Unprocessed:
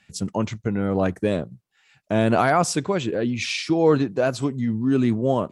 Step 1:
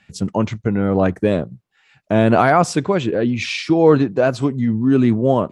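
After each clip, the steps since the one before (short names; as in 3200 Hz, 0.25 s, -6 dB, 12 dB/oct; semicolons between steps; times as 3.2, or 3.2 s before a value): high shelf 5000 Hz -10.5 dB; gain +5.5 dB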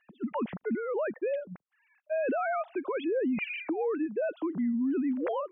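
sine-wave speech; compressor, threshold -14 dBFS, peak gain reduction 9 dB; limiter -16.5 dBFS, peak gain reduction 8.5 dB; gain -7.5 dB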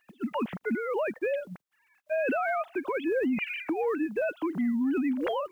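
spectral whitening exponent 0.6; gain +1.5 dB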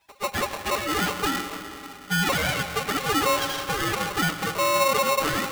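minimum comb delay 7.8 ms; reverb RT60 3.5 s, pre-delay 83 ms, DRR 7.5 dB; polarity switched at an audio rate 810 Hz; gain +5 dB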